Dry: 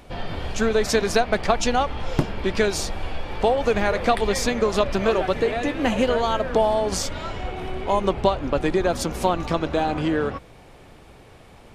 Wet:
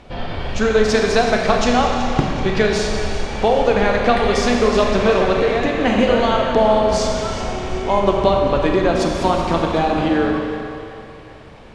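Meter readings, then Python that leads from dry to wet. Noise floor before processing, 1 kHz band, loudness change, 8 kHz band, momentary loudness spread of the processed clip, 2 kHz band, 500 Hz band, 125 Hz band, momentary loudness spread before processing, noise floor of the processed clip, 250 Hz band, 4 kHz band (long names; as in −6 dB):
−48 dBFS, +5.5 dB, +5.5 dB, +0.5 dB, 9 LU, +5.5 dB, +5.5 dB, +5.5 dB, 10 LU, −39 dBFS, +6.5 dB, +5.0 dB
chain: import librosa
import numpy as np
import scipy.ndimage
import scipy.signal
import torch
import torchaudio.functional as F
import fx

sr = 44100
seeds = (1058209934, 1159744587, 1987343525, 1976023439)

p1 = scipy.signal.sosfilt(scipy.signal.butter(2, 5600.0, 'lowpass', fs=sr, output='sos'), x)
p2 = p1 + fx.echo_feedback(p1, sr, ms=376, feedback_pct=47, wet_db=-14, dry=0)
p3 = fx.rev_schroeder(p2, sr, rt60_s=2.3, comb_ms=29, drr_db=1.0)
y = p3 * 10.0 ** (3.0 / 20.0)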